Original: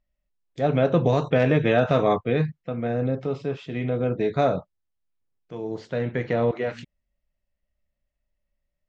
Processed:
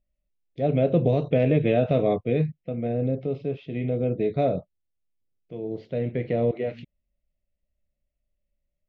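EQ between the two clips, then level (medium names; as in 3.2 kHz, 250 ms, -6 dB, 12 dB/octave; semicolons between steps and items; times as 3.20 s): distance through air 290 m; high-order bell 1.2 kHz -13.5 dB 1.3 oct; 0.0 dB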